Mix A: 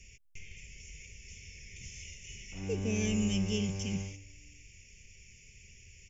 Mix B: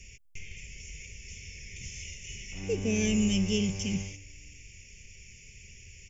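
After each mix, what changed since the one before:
speech +5.0 dB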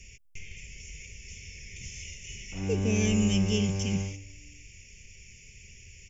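background +7.0 dB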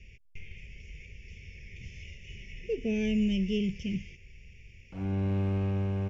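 speech: add high-frequency loss of the air 300 metres
background: entry +2.40 s

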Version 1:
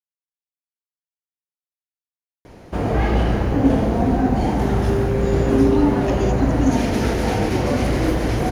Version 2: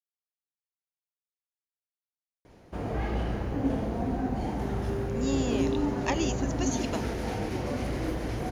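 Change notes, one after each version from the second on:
speech +4.0 dB
background −12.0 dB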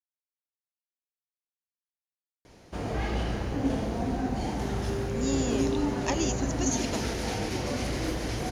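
speech: add parametric band 3,200 Hz −7.5 dB 2.6 octaves
master: add parametric band 5,900 Hz +10 dB 2.3 octaves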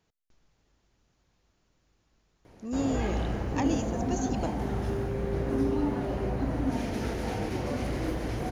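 speech: entry −2.50 s
master: add parametric band 5,900 Hz −10 dB 2.3 octaves

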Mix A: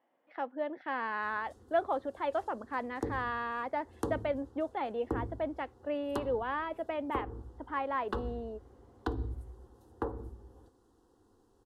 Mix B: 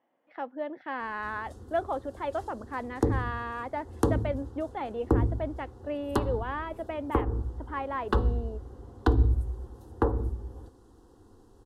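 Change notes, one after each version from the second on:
background +8.0 dB
master: add low-shelf EQ 160 Hz +8 dB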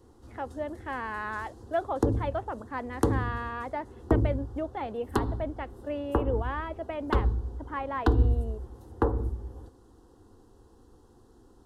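background: entry −1.00 s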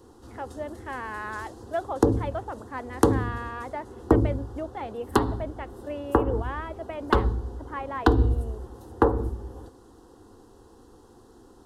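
background +7.5 dB
master: add low-shelf EQ 160 Hz −8 dB

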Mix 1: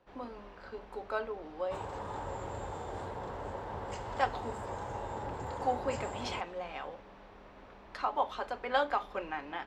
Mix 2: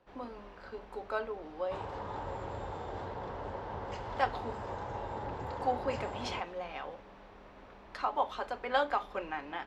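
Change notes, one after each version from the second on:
background: add low-pass filter 5,600 Hz 24 dB per octave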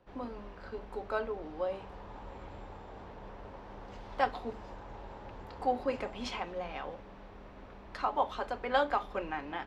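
speech: add low-shelf EQ 290 Hz +7 dB
background −10.5 dB

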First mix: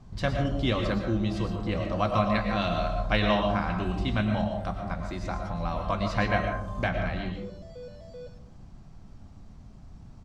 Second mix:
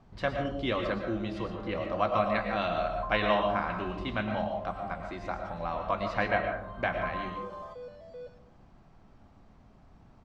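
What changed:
first sound: entry +0.85 s
master: add bass and treble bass −11 dB, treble −13 dB

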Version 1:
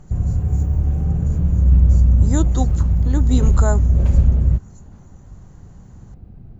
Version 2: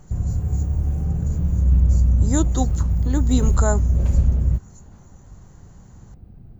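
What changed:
background −3.5 dB
master: add high-shelf EQ 10,000 Hz +12 dB

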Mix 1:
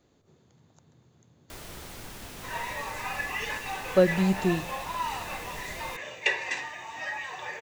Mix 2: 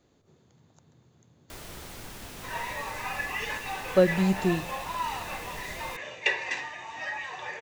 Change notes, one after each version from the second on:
second sound: add low-pass filter 6,800 Hz 12 dB per octave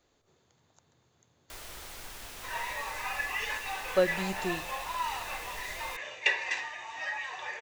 master: add parametric band 170 Hz −12.5 dB 2.5 octaves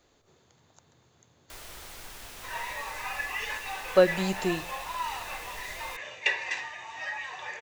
speech +5.5 dB

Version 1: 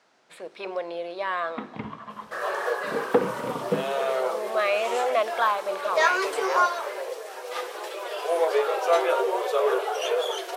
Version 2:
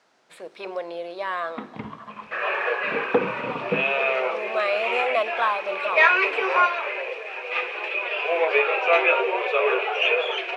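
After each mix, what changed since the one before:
second sound: add low-pass with resonance 2,500 Hz, resonance Q 13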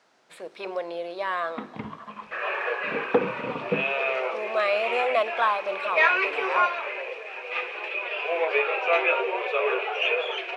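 first sound: send −11.5 dB
second sound −3.5 dB

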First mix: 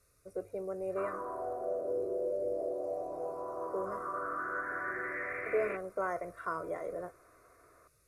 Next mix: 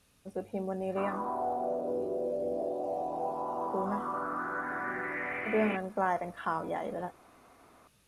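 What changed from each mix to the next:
speech: remove notch filter 1,700 Hz, Q 6.6
master: remove phaser with its sweep stopped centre 840 Hz, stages 6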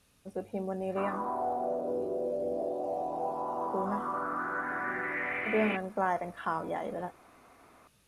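background: add high-shelf EQ 3,300 Hz +10 dB

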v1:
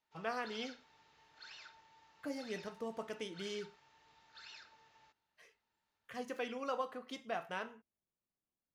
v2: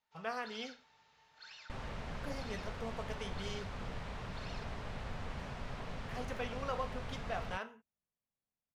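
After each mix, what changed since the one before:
second sound: unmuted
master: add parametric band 330 Hz −12 dB 0.35 octaves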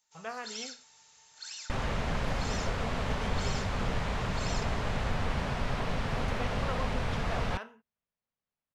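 first sound: remove high-frequency loss of the air 330 metres
second sound +11.5 dB

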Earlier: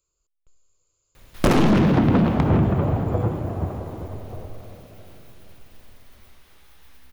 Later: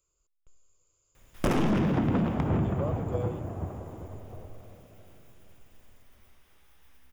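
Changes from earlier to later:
background −8.5 dB
master: add parametric band 4,200 Hz −9.5 dB 0.21 octaves

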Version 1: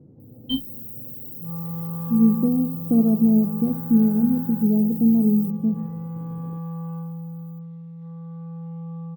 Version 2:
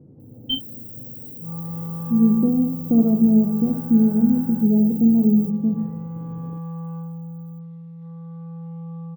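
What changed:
speech: send +6.5 dB
first sound: remove EQ curve with evenly spaced ripples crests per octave 1, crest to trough 17 dB

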